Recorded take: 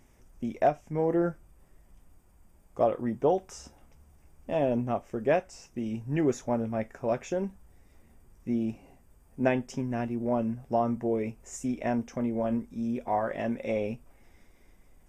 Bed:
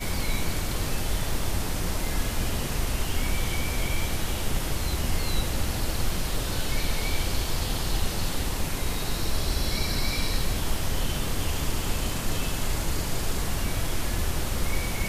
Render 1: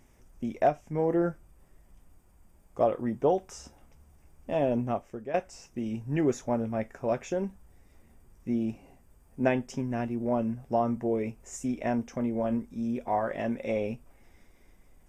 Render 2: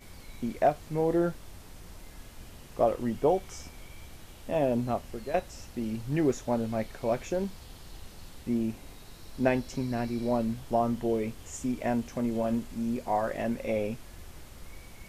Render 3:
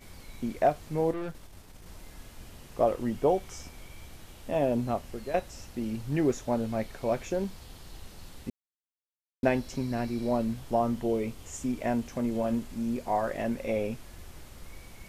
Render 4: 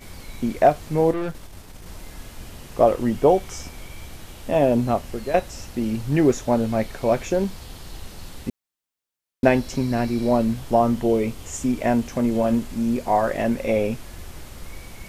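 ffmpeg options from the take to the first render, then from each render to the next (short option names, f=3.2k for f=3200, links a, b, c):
-filter_complex "[0:a]asplit=2[a][b];[a]atrim=end=5.34,asetpts=PTS-STARTPTS,afade=t=out:st=4.91:d=0.43:silence=0.16788[c];[b]atrim=start=5.34,asetpts=PTS-STARTPTS,afade=t=in:d=0.004:c=hsin:silence=0.16788[d];[c][d]concat=n=2:v=0:a=1"
-filter_complex "[1:a]volume=-20dB[a];[0:a][a]amix=inputs=2:normalize=0"
-filter_complex "[0:a]asettb=1/sr,asplit=3[a][b][c];[a]atrim=end=1.114[d];[b]atrim=start=1.11:end=1.86,asetpts=PTS-STARTPTS,afade=t=in:d=0.004:c=qsin,afade=t=out:st=0.746:d=0.004:c=qsin,aeval=exprs='(tanh(44.7*val(0)+0.6)-tanh(0.6))/44.7':c=same[e];[c]atrim=start=1.856[f];[d][e]acrossfade=d=0.004:c1=hsin:c2=qsin[g];[g][f]acrossfade=d=0.004:c1=qsin:c2=hsin,asettb=1/sr,asplit=3[h][i][j];[h]atrim=end=11.024[k];[i]atrim=start=11.02:end=11.46,asetpts=PTS-STARTPTS,afade=t=in:d=0.004:c=qsin,afade=t=out:st=0.436:d=0.004:c=qsin,bandreject=f=1.7k:w=9.1[l];[j]atrim=start=11.456[m];[k][l]acrossfade=d=0.004:c1=hsin:c2=qsin[n];[n][m]acrossfade=d=0.004:c1=qsin:c2=hsin,asplit=3[o][p][q];[o]atrim=end=8.5,asetpts=PTS-STARTPTS,afade=t=out:st=8.496:d=0.004:c=hsin[r];[p]atrim=start=8.5:end=9.43,asetpts=PTS-STARTPTS,volume=0[s];[q]atrim=start=9.43,asetpts=PTS-STARTPTS,afade=t=in:d=0.004:c=hsin[t];[r][s][t]concat=n=3:v=0:a=1"
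-af "volume=8.5dB"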